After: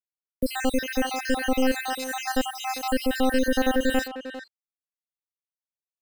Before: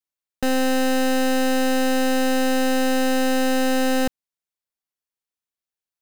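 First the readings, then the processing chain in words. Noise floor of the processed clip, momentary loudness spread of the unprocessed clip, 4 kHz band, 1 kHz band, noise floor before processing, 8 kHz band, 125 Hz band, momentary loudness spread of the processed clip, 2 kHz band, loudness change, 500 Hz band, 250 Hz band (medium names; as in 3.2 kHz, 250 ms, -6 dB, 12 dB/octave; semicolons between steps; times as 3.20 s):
under -85 dBFS, 2 LU, -4.5 dB, -4.0 dB, under -85 dBFS, -5.5 dB, no reading, 9 LU, -3.5 dB, -5.0 dB, -5.0 dB, -5.5 dB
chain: random holes in the spectrogram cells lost 68%; bit crusher 9-bit; speakerphone echo 400 ms, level -8 dB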